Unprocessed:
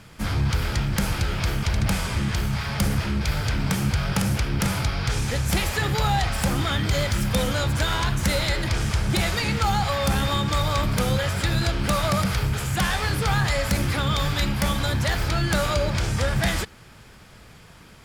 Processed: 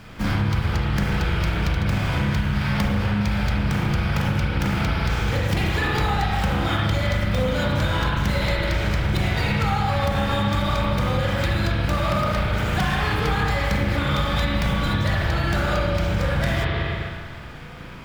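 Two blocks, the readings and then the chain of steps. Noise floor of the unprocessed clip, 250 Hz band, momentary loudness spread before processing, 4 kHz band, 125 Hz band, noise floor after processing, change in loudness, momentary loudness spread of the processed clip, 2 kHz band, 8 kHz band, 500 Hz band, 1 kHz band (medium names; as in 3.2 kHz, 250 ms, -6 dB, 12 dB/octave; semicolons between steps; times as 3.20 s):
-48 dBFS, +2.5 dB, 3 LU, -1.5 dB, +1.5 dB, -35 dBFS, +1.0 dB, 1 LU, +2.0 dB, -9.5 dB, +2.0 dB, +2.0 dB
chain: median filter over 5 samples; spring tank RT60 1.7 s, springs 35/39 ms, chirp 40 ms, DRR -5 dB; compression, threshold -22 dBFS, peak gain reduction 10.5 dB; trim +3.5 dB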